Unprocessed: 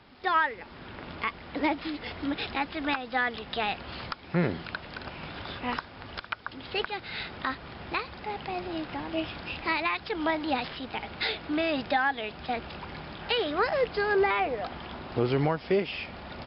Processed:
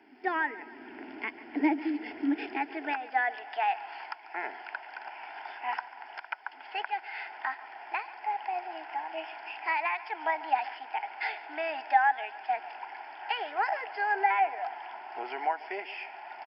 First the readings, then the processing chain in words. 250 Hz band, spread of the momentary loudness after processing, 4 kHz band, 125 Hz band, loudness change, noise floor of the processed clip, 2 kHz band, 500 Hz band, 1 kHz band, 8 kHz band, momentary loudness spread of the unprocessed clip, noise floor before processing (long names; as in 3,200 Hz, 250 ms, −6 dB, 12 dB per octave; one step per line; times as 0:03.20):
−3.5 dB, 14 LU, −10.5 dB, below −35 dB, −2.0 dB, −50 dBFS, −1.5 dB, −9.0 dB, +2.0 dB, can't be measured, 13 LU, −47 dBFS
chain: high-pass filter sweep 270 Hz → 830 Hz, 0:02.26–0:03.61
bass and treble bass −4 dB, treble +2 dB
phaser with its sweep stopped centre 790 Hz, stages 8
on a send: repeating echo 142 ms, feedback 52%, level −17.5 dB
on the sum: level −2 dB